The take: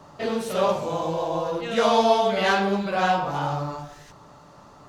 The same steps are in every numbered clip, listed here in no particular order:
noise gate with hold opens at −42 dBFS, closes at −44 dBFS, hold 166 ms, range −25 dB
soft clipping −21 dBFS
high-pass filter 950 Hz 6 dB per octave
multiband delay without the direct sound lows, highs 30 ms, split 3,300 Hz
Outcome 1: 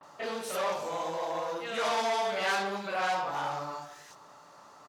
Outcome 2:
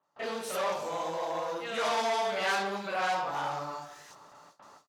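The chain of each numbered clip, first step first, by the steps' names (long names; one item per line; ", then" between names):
soft clipping, then multiband delay without the direct sound, then noise gate with hold, then high-pass filter
soft clipping, then high-pass filter, then noise gate with hold, then multiband delay without the direct sound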